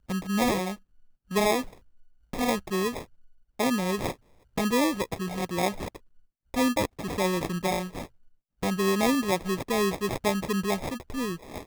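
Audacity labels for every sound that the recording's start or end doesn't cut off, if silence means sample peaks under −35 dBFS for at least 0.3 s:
1.310000	1.680000	sound
2.330000	3.020000	sound
3.590000	4.120000	sound
4.580000	5.960000	sound
6.540000	8.050000	sound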